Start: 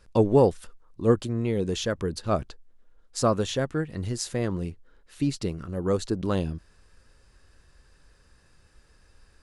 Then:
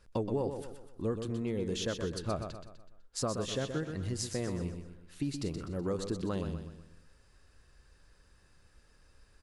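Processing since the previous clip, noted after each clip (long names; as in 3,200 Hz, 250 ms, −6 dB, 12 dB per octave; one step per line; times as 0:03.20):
downward compressor 6 to 1, threshold −25 dBFS, peak gain reduction 11 dB
on a send: repeating echo 125 ms, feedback 44%, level −7.5 dB
on the sum: level −5 dB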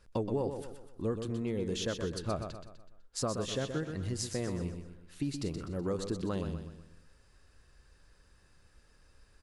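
no processing that can be heard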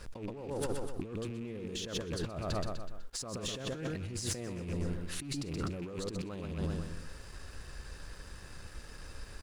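loose part that buzzes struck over −39 dBFS, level −40 dBFS
compressor whose output falls as the input rises −45 dBFS, ratio −1
leveller curve on the samples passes 2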